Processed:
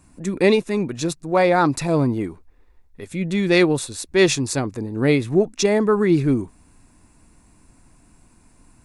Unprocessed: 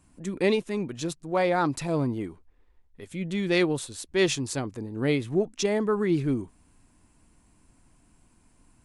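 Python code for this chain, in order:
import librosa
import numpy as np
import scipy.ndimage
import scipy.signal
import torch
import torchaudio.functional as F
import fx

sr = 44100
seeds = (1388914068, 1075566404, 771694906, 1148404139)

y = fx.notch(x, sr, hz=3100.0, q=7.8)
y = F.gain(torch.from_numpy(y), 7.5).numpy()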